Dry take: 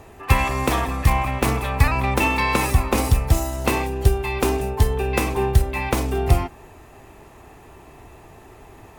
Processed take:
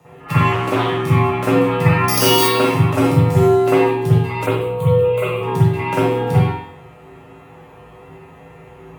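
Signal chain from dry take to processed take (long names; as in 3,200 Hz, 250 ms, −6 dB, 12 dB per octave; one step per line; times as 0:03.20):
0:02.08–0:02.48: bad sample-rate conversion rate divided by 8×, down filtered, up zero stuff
tuned comb filter 110 Hz, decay 0.54 s, harmonics all, mix 90%
0:04.46–0:05.43: phaser with its sweep stopped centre 1,100 Hz, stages 8
frequency shifter +54 Hz
convolution reverb RT60 0.60 s, pre-delay 44 ms, DRR −11 dB
0:00.52–0:01.03: highs frequency-modulated by the lows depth 0.19 ms
level +4 dB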